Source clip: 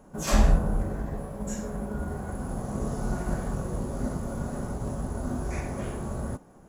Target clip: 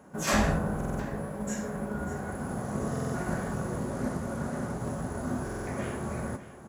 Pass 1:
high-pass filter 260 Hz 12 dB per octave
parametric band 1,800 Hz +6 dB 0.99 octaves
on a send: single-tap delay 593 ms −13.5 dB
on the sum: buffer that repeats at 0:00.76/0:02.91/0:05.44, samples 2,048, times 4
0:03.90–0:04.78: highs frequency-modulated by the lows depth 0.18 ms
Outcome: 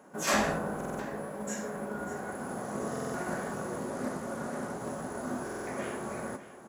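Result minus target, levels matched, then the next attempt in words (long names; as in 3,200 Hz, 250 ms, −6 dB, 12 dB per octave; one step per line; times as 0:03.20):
125 Hz band −7.5 dB
high-pass filter 95 Hz 12 dB per octave
parametric band 1,800 Hz +6 dB 0.99 octaves
on a send: single-tap delay 593 ms −13.5 dB
on the sum: buffer that repeats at 0:00.76/0:02.91/0:05.44, samples 2,048, times 4
0:03.90–0:04.78: highs frequency-modulated by the lows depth 0.18 ms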